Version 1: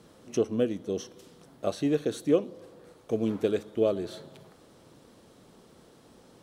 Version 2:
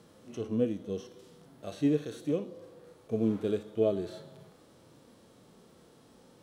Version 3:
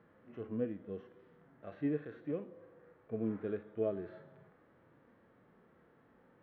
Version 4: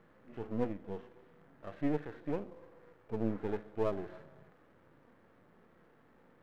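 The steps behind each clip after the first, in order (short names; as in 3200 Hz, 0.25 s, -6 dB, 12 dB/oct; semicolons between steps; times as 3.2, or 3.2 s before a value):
harmonic-percussive split percussive -16 dB; gain +1.5 dB
ladder low-pass 2100 Hz, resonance 50%; gain +1.5 dB
half-wave gain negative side -12 dB; gain +5 dB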